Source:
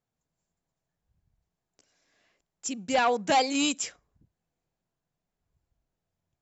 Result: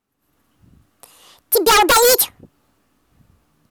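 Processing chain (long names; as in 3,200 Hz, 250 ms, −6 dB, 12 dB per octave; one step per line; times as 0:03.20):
automatic gain control gain up to 14 dB
wrong playback speed 45 rpm record played at 78 rpm
in parallel at −8.5 dB: sine wavefolder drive 12 dB, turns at −2.5 dBFS
on the sum: level −2 dB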